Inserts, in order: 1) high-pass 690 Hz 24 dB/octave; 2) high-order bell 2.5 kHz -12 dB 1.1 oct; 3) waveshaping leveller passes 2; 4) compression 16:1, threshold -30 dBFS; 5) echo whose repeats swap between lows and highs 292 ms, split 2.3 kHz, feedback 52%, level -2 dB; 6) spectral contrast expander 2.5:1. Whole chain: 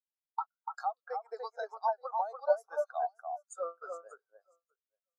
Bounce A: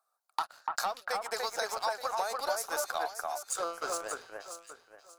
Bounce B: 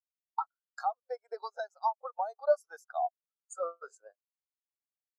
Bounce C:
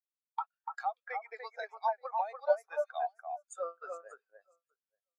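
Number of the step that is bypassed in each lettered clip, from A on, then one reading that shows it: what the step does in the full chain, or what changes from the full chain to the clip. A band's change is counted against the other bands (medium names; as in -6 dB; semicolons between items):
6, 8 kHz band +19.0 dB; 5, momentary loudness spread change +1 LU; 2, 2 kHz band +4.5 dB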